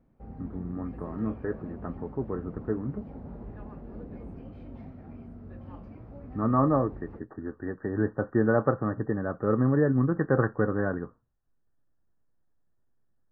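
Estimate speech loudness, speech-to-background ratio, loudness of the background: -28.5 LUFS, 16.0 dB, -44.5 LUFS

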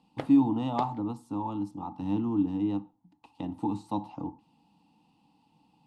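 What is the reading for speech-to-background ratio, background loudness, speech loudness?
13.5 dB, -44.0 LUFS, -30.5 LUFS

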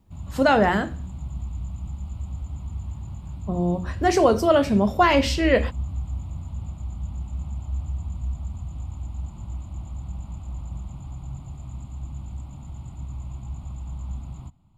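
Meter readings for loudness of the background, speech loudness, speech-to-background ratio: -34.5 LUFS, -20.5 LUFS, 14.0 dB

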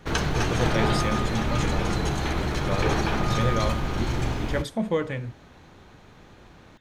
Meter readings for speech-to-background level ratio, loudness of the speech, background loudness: -4.5 dB, -31.0 LUFS, -26.5 LUFS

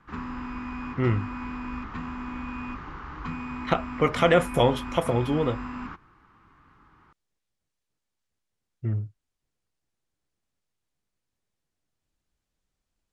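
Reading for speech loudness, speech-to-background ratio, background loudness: -25.5 LUFS, 10.5 dB, -36.0 LUFS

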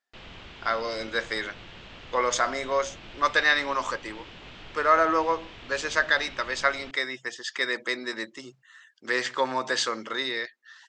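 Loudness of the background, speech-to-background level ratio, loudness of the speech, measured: -45.0 LUFS, 18.0 dB, -27.0 LUFS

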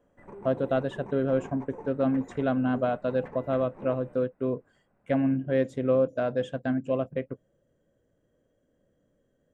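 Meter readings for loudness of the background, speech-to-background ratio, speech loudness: -46.0 LUFS, 17.5 dB, -28.5 LUFS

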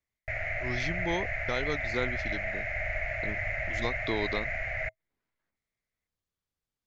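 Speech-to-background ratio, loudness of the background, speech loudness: -3.5 dB, -32.5 LUFS, -36.0 LUFS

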